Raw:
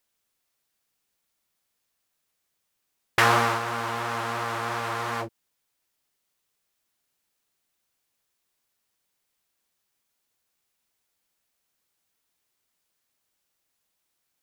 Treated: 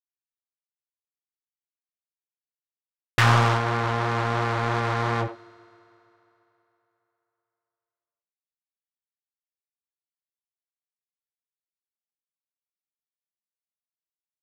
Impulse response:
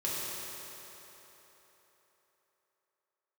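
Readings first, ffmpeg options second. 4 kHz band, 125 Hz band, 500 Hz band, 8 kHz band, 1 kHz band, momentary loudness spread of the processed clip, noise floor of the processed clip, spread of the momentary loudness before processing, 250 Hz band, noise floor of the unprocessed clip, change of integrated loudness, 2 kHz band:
+1.0 dB, +12.0 dB, +3.0 dB, -2.5 dB, +1.5 dB, 9 LU, under -85 dBFS, 11 LU, +5.0 dB, -78 dBFS, +2.5 dB, +0.5 dB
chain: -filter_complex "[0:a]equalizer=f=120:w=1.1:g=11.5,aeval=exprs='sgn(val(0))*max(abs(val(0))-0.02,0)':c=same,adynamicsmooth=sensitivity=1.5:basefreq=4.6k,aeval=exprs='(tanh(7.08*val(0)+0.25)-tanh(0.25))/7.08':c=same,asplit=2[a][b];[b]adelay=80,highpass=300,lowpass=3.4k,asoftclip=type=hard:threshold=-23.5dB,volume=-11dB[c];[a][c]amix=inputs=2:normalize=0,asplit=2[d][e];[1:a]atrim=start_sample=2205,asetrate=48510,aresample=44100[f];[e][f]afir=irnorm=-1:irlink=0,volume=-23dB[g];[d][g]amix=inputs=2:normalize=0,volume=6dB"

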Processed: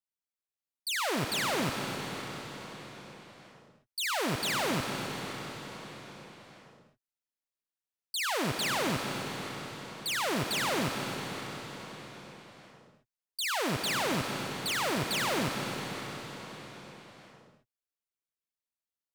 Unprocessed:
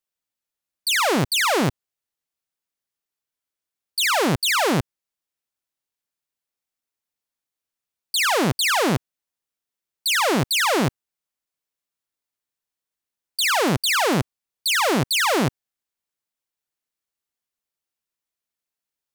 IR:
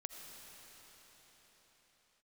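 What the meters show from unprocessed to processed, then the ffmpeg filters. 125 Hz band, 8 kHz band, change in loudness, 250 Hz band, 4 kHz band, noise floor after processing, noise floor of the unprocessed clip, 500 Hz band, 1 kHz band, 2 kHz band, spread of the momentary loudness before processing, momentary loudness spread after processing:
-10.0 dB, -10.0 dB, -12.0 dB, -9.5 dB, -10.0 dB, under -85 dBFS, under -85 dBFS, -10.0 dB, -10.0 dB, -10.0 dB, 8 LU, 18 LU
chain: -filter_complex "[1:a]atrim=start_sample=2205[a];[0:a][a]afir=irnorm=-1:irlink=0,volume=-7dB"

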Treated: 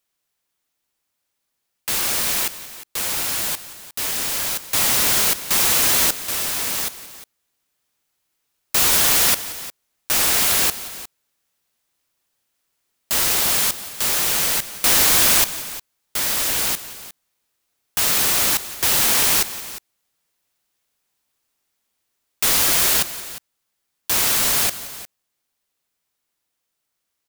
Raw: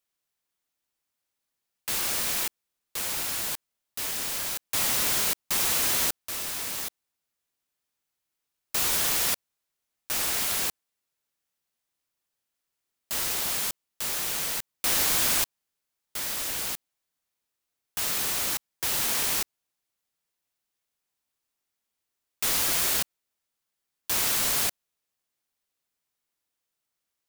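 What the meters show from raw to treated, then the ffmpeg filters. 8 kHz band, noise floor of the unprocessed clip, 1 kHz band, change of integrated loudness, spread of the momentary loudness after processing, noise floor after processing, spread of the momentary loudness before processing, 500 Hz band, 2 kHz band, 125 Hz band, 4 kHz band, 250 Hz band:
+9.0 dB, -84 dBFS, +9.0 dB, +8.5 dB, 17 LU, -77 dBFS, 10 LU, +8.5 dB, +9.0 dB, +8.5 dB, +9.0 dB, +8.5 dB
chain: -filter_complex "[0:a]dynaudnorm=f=940:g=13:m=3.5dB,asoftclip=type=hard:threshold=-16.5dB,asplit=2[a][b];[b]aecho=0:1:177|356:0.133|0.158[c];[a][c]amix=inputs=2:normalize=0,volume=6.5dB"

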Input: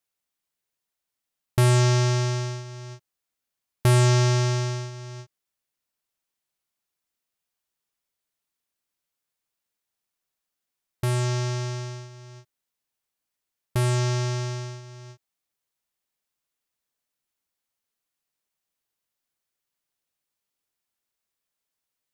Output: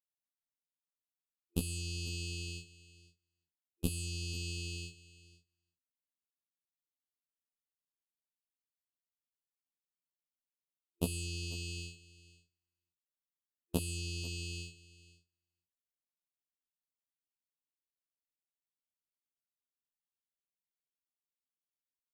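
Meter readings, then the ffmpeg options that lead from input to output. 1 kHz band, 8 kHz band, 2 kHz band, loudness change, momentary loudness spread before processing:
-27.5 dB, -10.0 dB, -13.0 dB, -16.0 dB, 20 LU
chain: -filter_complex "[0:a]afftfilt=real='re*(1-between(b*sr/4096,370,2500))':imag='im*(1-between(b*sr/4096,370,2500))':win_size=4096:overlap=0.75,agate=range=-24dB:threshold=-35dB:ratio=16:detection=peak,equalizer=f=5.5k:t=o:w=0.7:g=-11,acrossover=split=220|3000[a][b][c];[b]acompressor=threshold=-35dB:ratio=6[d];[a][d][c]amix=inputs=3:normalize=0,alimiter=limit=-18dB:level=0:latency=1,acompressor=threshold=-33dB:ratio=4,afftfilt=real='hypot(re,im)*cos(PI*b)':imag='0':win_size=2048:overlap=0.75,asplit=2[e][f];[f]adelay=16,volume=-5.5dB[g];[e][g]amix=inputs=2:normalize=0,aecho=1:1:495:0.112,volume=10dB"

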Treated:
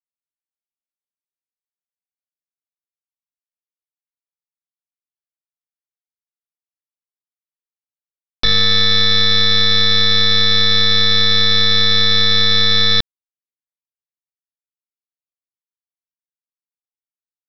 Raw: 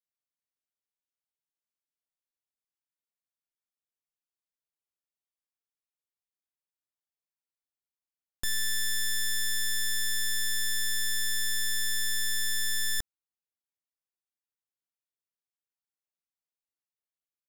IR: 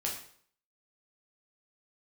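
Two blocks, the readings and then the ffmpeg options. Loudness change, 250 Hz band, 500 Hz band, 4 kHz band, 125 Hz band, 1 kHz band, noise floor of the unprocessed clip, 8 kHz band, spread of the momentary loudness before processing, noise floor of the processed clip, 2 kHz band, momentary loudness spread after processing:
+17.0 dB, +29.0 dB, +34.5 dB, +21.5 dB, +27.0 dB, +31.5 dB, under -85 dBFS, -3.0 dB, 2 LU, under -85 dBFS, +13.0 dB, 2 LU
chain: -af "bandreject=f=50:t=h:w=6,bandreject=f=100:t=h:w=6,bandreject=f=150:t=h:w=6,bandreject=f=200:t=h:w=6,aresample=11025,acrusher=bits=3:mix=0:aa=0.5,aresample=44100,alimiter=level_in=36dB:limit=-1dB:release=50:level=0:latency=1,volume=-1dB"

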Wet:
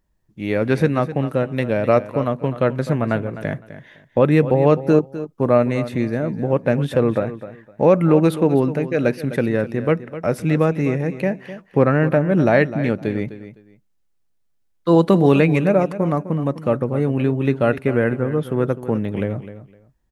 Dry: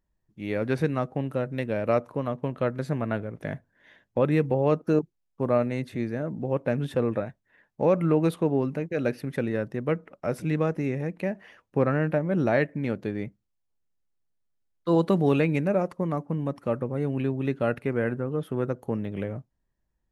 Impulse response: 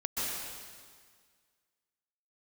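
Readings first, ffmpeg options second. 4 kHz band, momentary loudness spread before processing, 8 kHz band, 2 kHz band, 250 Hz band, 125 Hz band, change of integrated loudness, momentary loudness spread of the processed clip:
+8.0 dB, 10 LU, n/a, +8.0 dB, +8.0 dB, +8.0 dB, +8.0 dB, 10 LU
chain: -af "aecho=1:1:255|510:0.211|0.0444,volume=8dB"

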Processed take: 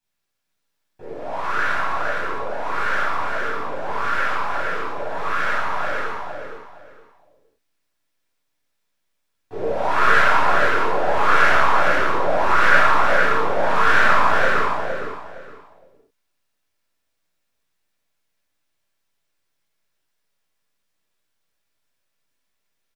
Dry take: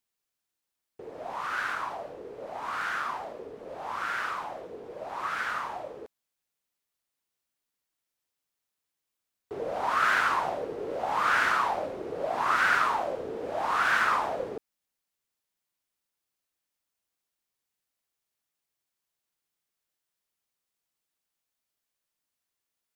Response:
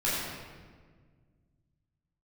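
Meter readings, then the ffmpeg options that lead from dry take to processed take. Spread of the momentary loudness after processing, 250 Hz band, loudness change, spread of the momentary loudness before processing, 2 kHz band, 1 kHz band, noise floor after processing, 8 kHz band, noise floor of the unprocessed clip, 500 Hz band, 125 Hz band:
14 LU, +11.0 dB, +9.0 dB, 18 LU, +10.0 dB, +9.5 dB, -74 dBFS, +5.5 dB, under -85 dBFS, +11.0 dB, +15.5 dB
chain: -filter_complex "[0:a]aeval=exprs='if(lt(val(0),0),0.708*val(0),val(0))':c=same,highshelf=f=6.1k:g=-5.5,aecho=1:1:463|926|1389:0.631|0.151|0.0363[a];[1:a]atrim=start_sample=2205,atrim=end_sample=6174[b];[a][b]afir=irnorm=-1:irlink=0,volume=1dB"

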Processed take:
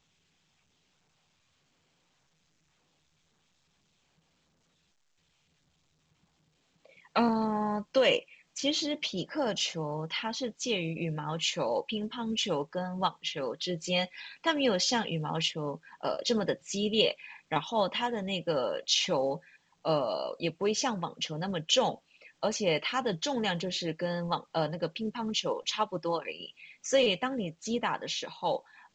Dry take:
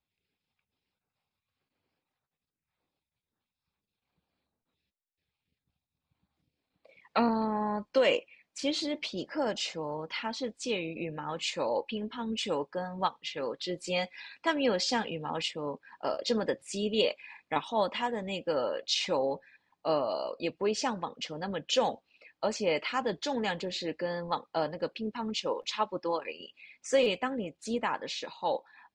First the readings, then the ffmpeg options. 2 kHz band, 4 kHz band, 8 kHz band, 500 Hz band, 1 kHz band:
+1.0 dB, +4.0 dB, +5.0 dB, 0.0 dB, 0.0 dB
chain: -af "equalizer=f=160:t=o:w=0.33:g=10,equalizer=f=3.15k:t=o:w=0.33:g=6,equalizer=f=6.3k:t=o:w=0.33:g=7" -ar 16000 -c:a pcm_alaw

